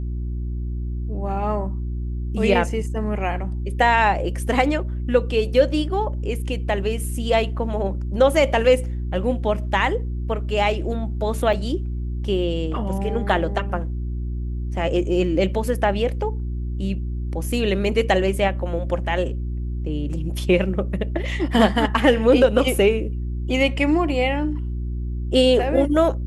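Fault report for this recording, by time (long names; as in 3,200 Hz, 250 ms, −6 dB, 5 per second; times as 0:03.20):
mains hum 60 Hz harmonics 6 −26 dBFS
0:11.53: drop-out 3.8 ms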